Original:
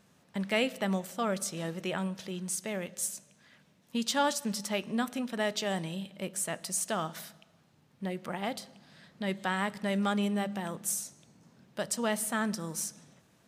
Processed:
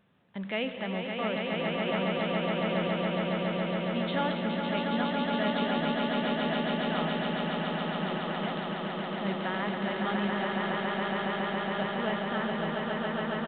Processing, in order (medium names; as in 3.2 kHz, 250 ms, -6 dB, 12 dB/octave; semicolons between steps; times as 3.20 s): transient shaper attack 0 dB, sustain +6 dB; echo with a slow build-up 139 ms, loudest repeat 8, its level -4 dB; resampled via 8 kHz; trim -3.5 dB